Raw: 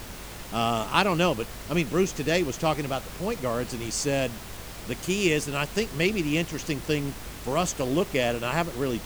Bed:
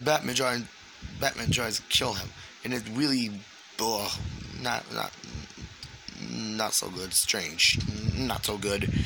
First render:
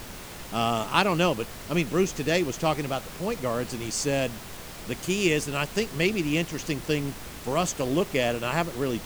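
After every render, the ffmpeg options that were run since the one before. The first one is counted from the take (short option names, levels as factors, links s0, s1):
-af "bandreject=f=50:t=h:w=4,bandreject=f=100:t=h:w=4"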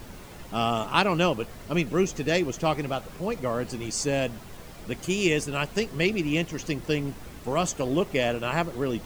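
-af "afftdn=nr=8:nf=-41"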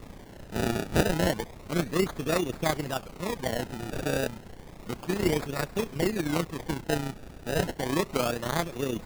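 -af "tremolo=f=30:d=0.571,acrusher=samples=28:mix=1:aa=0.000001:lfo=1:lforange=28:lforate=0.31"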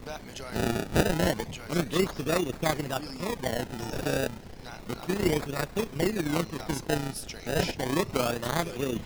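-filter_complex "[1:a]volume=0.178[s0];[0:a][s0]amix=inputs=2:normalize=0"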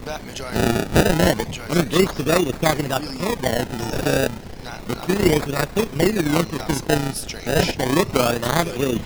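-af "volume=2.82,alimiter=limit=0.708:level=0:latency=1"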